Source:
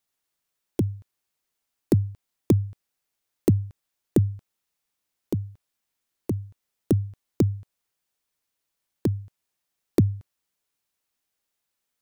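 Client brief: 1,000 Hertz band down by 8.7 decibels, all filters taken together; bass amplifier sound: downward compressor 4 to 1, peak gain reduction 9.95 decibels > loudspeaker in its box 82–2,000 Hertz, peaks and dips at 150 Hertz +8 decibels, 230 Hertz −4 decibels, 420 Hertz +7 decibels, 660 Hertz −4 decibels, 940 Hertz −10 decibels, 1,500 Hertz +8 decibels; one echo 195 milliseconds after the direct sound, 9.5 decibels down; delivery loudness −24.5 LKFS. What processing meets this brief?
parametric band 1,000 Hz −7.5 dB
single-tap delay 195 ms −9.5 dB
downward compressor 4 to 1, threshold −26 dBFS
loudspeaker in its box 82–2,000 Hz, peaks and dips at 150 Hz +8 dB, 230 Hz −4 dB, 420 Hz +7 dB, 660 Hz −4 dB, 940 Hz −10 dB, 1,500 Hz +8 dB
level +8.5 dB

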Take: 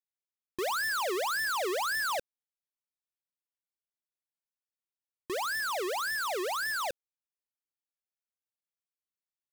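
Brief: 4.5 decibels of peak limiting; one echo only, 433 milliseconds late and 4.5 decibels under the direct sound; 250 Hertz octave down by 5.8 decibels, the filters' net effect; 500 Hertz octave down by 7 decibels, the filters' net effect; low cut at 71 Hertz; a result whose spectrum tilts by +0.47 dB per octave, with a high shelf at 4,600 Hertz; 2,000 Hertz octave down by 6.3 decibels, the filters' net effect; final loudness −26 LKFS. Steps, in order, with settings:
high-pass filter 71 Hz
parametric band 250 Hz −3 dB
parametric band 500 Hz −8 dB
parametric band 2,000 Hz −9 dB
high-shelf EQ 4,600 Hz +7.5 dB
brickwall limiter −25.5 dBFS
single-tap delay 433 ms −4.5 dB
level +8 dB

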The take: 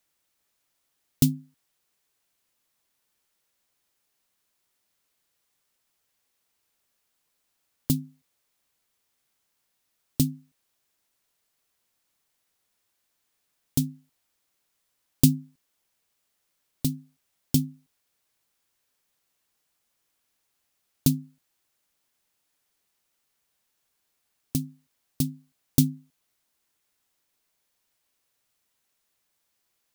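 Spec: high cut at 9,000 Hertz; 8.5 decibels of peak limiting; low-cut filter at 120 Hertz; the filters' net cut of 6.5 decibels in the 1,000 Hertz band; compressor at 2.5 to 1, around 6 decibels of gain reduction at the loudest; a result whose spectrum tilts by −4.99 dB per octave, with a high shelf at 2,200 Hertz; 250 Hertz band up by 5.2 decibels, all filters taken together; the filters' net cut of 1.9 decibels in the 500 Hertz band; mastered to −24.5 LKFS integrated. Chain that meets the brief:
high-pass filter 120 Hz
low-pass filter 9,000 Hz
parametric band 250 Hz +8 dB
parametric band 500 Hz −7.5 dB
parametric band 1,000 Hz −7 dB
high-shelf EQ 2,200 Hz +3.5 dB
downward compressor 2.5 to 1, threshold −20 dBFS
level +8 dB
brickwall limiter −6 dBFS

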